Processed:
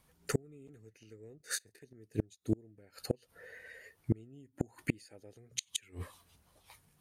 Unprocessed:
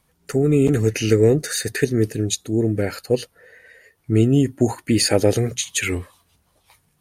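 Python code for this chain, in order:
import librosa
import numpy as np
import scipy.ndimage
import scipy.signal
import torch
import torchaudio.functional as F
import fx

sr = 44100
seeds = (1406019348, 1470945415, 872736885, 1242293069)

y = fx.gate_flip(x, sr, shuts_db=-13.0, range_db=-34)
y = fx.detune_double(y, sr, cents=56, at=(1.38, 1.81))
y = F.gain(torch.from_numpy(y), -4.0).numpy()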